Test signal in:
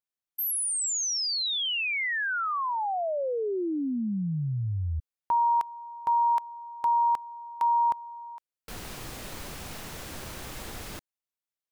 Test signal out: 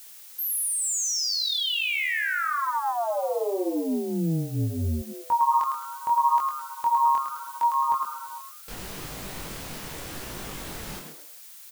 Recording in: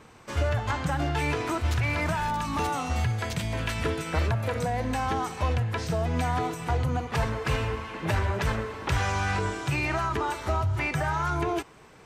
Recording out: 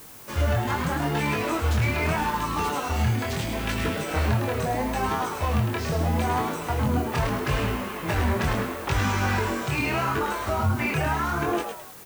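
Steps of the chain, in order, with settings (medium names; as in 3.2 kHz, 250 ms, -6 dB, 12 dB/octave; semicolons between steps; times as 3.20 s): frequency-shifting echo 106 ms, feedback 35%, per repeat +140 Hz, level -6 dB; chorus 0.77 Hz, delay 19.5 ms, depth 6.3 ms; added noise blue -50 dBFS; trim +4 dB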